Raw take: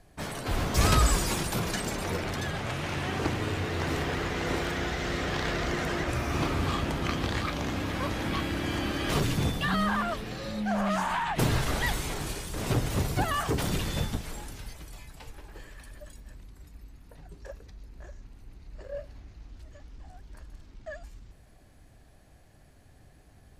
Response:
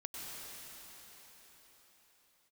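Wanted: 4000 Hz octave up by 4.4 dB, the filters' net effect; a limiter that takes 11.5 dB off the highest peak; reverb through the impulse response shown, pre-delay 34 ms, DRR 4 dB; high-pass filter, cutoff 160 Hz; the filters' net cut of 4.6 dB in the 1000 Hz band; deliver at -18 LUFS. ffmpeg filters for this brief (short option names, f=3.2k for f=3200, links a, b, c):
-filter_complex "[0:a]highpass=160,equalizer=f=1k:t=o:g=-6.5,equalizer=f=4k:t=o:g=6,alimiter=limit=-22dB:level=0:latency=1,asplit=2[a][b];[1:a]atrim=start_sample=2205,adelay=34[c];[b][c]afir=irnorm=-1:irlink=0,volume=-4dB[d];[a][d]amix=inputs=2:normalize=0,volume=12.5dB"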